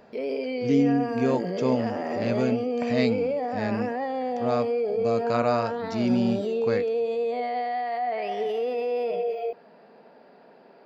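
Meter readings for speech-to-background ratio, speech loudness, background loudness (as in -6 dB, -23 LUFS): 0.5 dB, -28.0 LUFS, -28.5 LUFS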